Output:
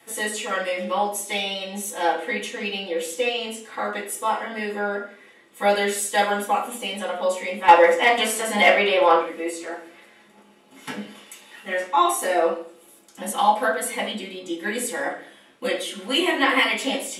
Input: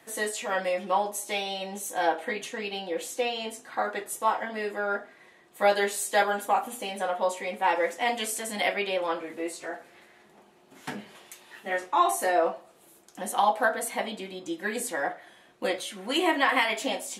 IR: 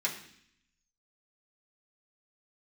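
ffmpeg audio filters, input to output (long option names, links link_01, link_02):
-filter_complex "[0:a]asettb=1/sr,asplit=3[link_01][link_02][link_03];[link_01]atrim=end=7.684[link_04];[link_02]atrim=start=7.68:end=9.23,asetpts=PTS-STARTPTS,afade=type=in:duration=0.004:curve=qsin,afade=type=out:start_time=1.546:duration=0.004:curve=qsin,equalizer=frequency=890:width_type=o:width=2.6:gain=10.5[link_05];[link_03]atrim=start=9.226[link_06];[link_04][link_05]acrossfade=duration=0.004:curve1=hsin:curve2=qsin[link_07];[link_07][link_06]acrossfade=duration=0.004:curve1=qsin:curve2=hsin,asoftclip=type=hard:threshold=-9dB[link_08];[1:a]atrim=start_sample=2205,asetrate=61740,aresample=44100[link_09];[link_08][link_09]afir=irnorm=-1:irlink=0,volume=2.5dB"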